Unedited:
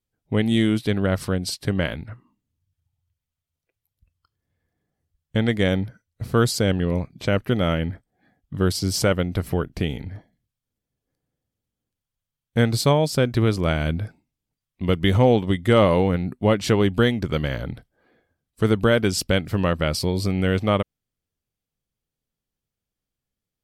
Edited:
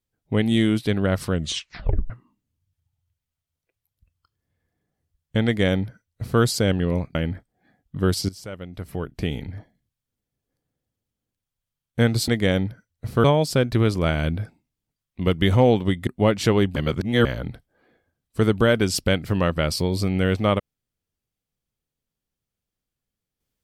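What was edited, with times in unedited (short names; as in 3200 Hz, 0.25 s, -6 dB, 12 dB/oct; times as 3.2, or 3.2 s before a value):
1.32 tape stop 0.78 s
5.45–6.41 copy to 12.86
7.15–7.73 cut
8.87–9.93 fade in quadratic, from -18 dB
15.69–16.3 cut
16.99–17.48 reverse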